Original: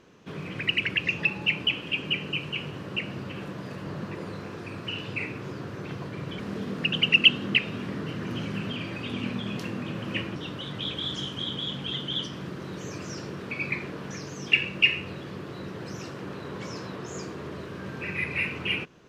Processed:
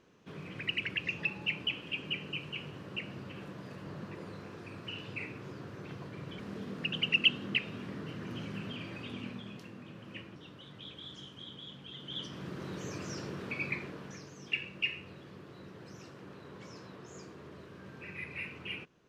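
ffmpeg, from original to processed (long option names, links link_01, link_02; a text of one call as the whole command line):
ffmpeg -i in.wav -af "volume=3dB,afade=type=out:start_time=8.99:duration=0.65:silence=0.446684,afade=type=in:start_time=11.95:duration=0.67:silence=0.266073,afade=type=out:start_time=13.45:duration=0.87:silence=0.375837" out.wav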